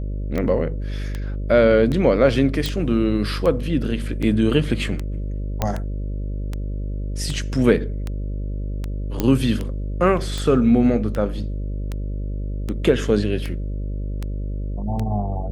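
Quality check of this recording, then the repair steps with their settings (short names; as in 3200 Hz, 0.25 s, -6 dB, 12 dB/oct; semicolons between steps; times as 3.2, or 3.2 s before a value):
buzz 50 Hz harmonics 12 -26 dBFS
tick 78 rpm -14 dBFS
2.66 pop
5.62 pop -7 dBFS
9.2 pop -7 dBFS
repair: de-click; de-hum 50 Hz, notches 12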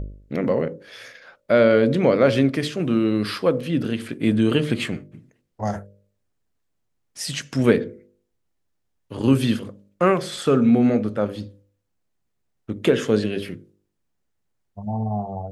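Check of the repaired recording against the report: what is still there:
5.62 pop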